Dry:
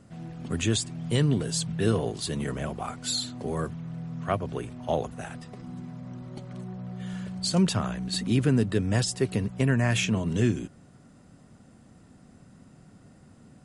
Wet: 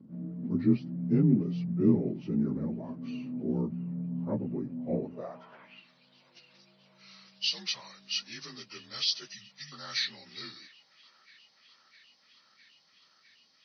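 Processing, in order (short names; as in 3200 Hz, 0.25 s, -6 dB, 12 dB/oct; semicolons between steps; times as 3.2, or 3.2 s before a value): inharmonic rescaling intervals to 85%; spectral delete 9.33–9.72, 250–1700 Hz; band-limited delay 0.657 s, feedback 83%, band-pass 1400 Hz, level -20 dB; band-pass sweep 240 Hz -> 4500 Hz, 5.01–5.89; gain +7 dB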